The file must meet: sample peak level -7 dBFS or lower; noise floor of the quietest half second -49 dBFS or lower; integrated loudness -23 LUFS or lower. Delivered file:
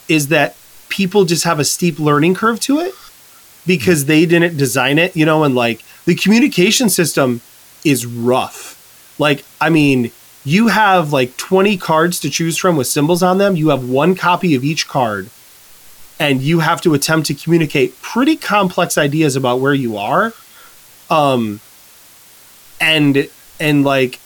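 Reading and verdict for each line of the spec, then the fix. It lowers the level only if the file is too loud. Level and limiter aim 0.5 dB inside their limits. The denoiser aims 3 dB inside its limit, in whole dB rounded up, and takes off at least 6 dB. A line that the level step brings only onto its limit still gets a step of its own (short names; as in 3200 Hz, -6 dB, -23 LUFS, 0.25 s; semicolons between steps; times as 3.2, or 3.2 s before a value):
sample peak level -1.5 dBFS: fail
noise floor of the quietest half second -43 dBFS: fail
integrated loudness -14.0 LUFS: fail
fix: gain -9.5 dB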